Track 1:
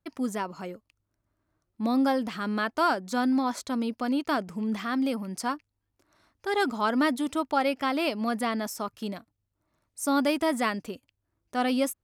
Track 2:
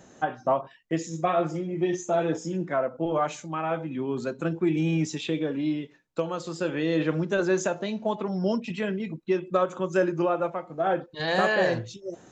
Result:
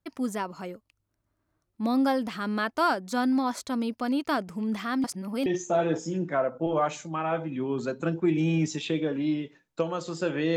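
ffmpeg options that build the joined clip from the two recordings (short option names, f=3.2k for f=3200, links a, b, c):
-filter_complex "[0:a]apad=whole_dur=10.56,atrim=end=10.56,asplit=2[a][b];[a]atrim=end=5.042[c];[b]atrim=start=5.038:end=5.462,asetpts=PTS-STARTPTS,areverse[d];[1:a]atrim=start=1.848:end=6.95[e];[c][d]acrossfade=d=0.004:c1=hsin:c2=hsin[f];[f][e]acrossfade=d=0.004:c1=hsin:c2=hsin"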